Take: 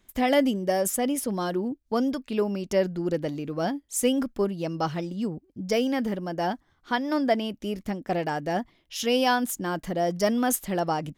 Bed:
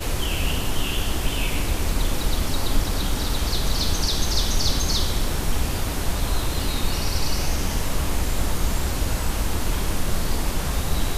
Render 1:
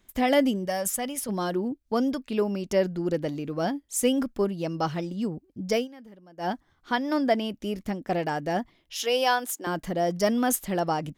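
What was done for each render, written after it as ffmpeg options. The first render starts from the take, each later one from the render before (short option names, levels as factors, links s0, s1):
-filter_complex "[0:a]asettb=1/sr,asplit=3[s0][s1][s2];[s0]atrim=end=0.654[s3];[s1]atrim=start=0.65:end=1.29,asetpts=PTS-STARTPTS,afade=t=in:d=0.004:c=qsin,afade=t=out:st=0.636:d=0.004:c=qsin,equalizer=f=350:t=o:w=1.1:g=-12.5[s4];[s2]atrim=start=1.286[s5];[s3][s4]acrossfade=d=0.004:c1=hsin:c2=qsin[s6];[s6][s5]acrossfade=d=0.004:c1=qsin:c2=hsin,asettb=1/sr,asplit=3[s7][s8][s9];[s7]atrim=end=8.984[s10];[s8]atrim=start=8.98:end=9.67,asetpts=PTS-STARTPTS,afade=t=in:d=0.004:c=qsin,afade=t=out:st=0.686:d=0.004:c=qsin,highpass=f=350:w=0.5412,highpass=f=350:w=1.3066[s11];[s9]atrim=start=9.666[s12];[s10][s11]acrossfade=d=0.004:c1=hsin:c2=qsin[s13];[s13][s12]acrossfade=d=0.004:c1=qsin:c2=hsin,asplit=3[s14][s15][s16];[s14]atrim=end=5.88,asetpts=PTS-STARTPTS,afade=t=out:st=5.76:d=0.12:silence=0.1[s17];[s15]atrim=start=5.88:end=6.37,asetpts=PTS-STARTPTS,volume=0.1[s18];[s16]atrim=start=6.37,asetpts=PTS-STARTPTS,afade=t=in:d=0.12:silence=0.1[s19];[s17][s18][s19]concat=n=3:v=0:a=1"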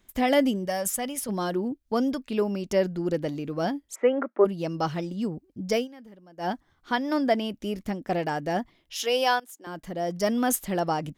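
-filter_complex "[0:a]asplit=3[s0][s1][s2];[s0]afade=t=out:st=3.94:d=0.02[s3];[s1]highpass=f=250:w=0.5412,highpass=f=250:w=1.3066,equalizer=f=260:t=q:w=4:g=-5,equalizer=f=380:t=q:w=4:g=7,equalizer=f=610:t=q:w=4:g=9,equalizer=f=890:t=q:w=4:g=5,equalizer=f=1300:t=q:w=4:g=9,equalizer=f=2000:t=q:w=4:g=8,lowpass=f=2100:w=0.5412,lowpass=f=2100:w=1.3066,afade=t=in:st=3.94:d=0.02,afade=t=out:st=4.44:d=0.02[s4];[s2]afade=t=in:st=4.44:d=0.02[s5];[s3][s4][s5]amix=inputs=3:normalize=0,asplit=2[s6][s7];[s6]atrim=end=9.4,asetpts=PTS-STARTPTS,afade=t=out:st=9.396:d=0.004:c=hsin:silence=0.11885[s8];[s7]atrim=start=9.4,asetpts=PTS-STARTPTS,afade=t=in:d=1.05:silence=0.11885[s9];[s8][s9]concat=n=2:v=0:a=1"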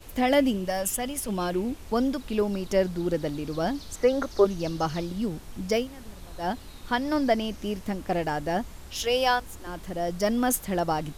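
-filter_complex "[1:a]volume=0.0944[s0];[0:a][s0]amix=inputs=2:normalize=0"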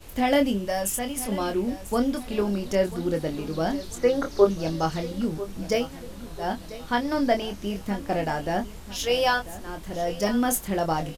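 -filter_complex "[0:a]asplit=2[s0][s1];[s1]adelay=25,volume=0.501[s2];[s0][s2]amix=inputs=2:normalize=0,aecho=1:1:992|1984|2976|3968:0.168|0.0688|0.0282|0.0116"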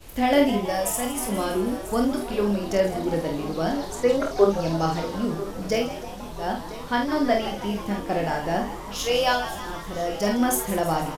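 -filter_complex "[0:a]asplit=2[s0][s1];[s1]adelay=49,volume=0.562[s2];[s0][s2]amix=inputs=2:normalize=0,asplit=8[s3][s4][s5][s6][s7][s8][s9][s10];[s4]adelay=162,afreqshift=130,volume=0.224[s11];[s5]adelay=324,afreqshift=260,volume=0.143[s12];[s6]adelay=486,afreqshift=390,volume=0.0912[s13];[s7]adelay=648,afreqshift=520,volume=0.0589[s14];[s8]adelay=810,afreqshift=650,volume=0.0376[s15];[s9]adelay=972,afreqshift=780,volume=0.024[s16];[s10]adelay=1134,afreqshift=910,volume=0.0153[s17];[s3][s11][s12][s13][s14][s15][s16][s17]amix=inputs=8:normalize=0"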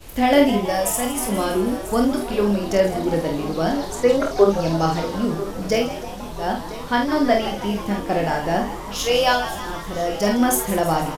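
-af "volume=1.58,alimiter=limit=0.708:level=0:latency=1"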